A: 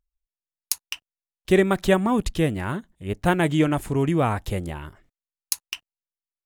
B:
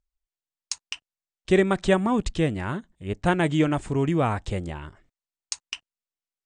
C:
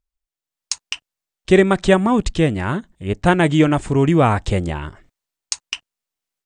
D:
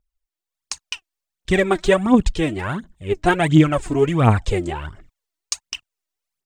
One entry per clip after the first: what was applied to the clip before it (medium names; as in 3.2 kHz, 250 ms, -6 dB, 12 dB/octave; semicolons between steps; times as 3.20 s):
steep low-pass 9 kHz 96 dB/octave; trim -1.5 dB
level rider gain up to 10.5 dB
phaser 1.4 Hz, delay 3.3 ms, feedback 69%; trim -4 dB